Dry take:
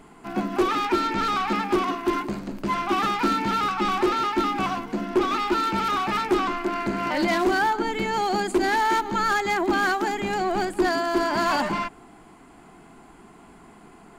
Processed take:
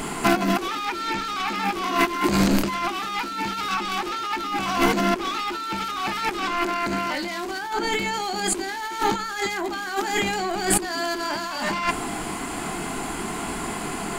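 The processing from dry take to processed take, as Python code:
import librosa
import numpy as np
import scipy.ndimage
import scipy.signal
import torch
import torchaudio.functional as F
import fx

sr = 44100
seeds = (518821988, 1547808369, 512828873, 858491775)

y = fx.high_shelf(x, sr, hz=2300.0, db=10.5)
y = fx.doubler(y, sr, ms=26.0, db=-8)
y = fx.over_compress(y, sr, threshold_db=-33.0, ratio=-1.0)
y = y * librosa.db_to_amplitude(7.0)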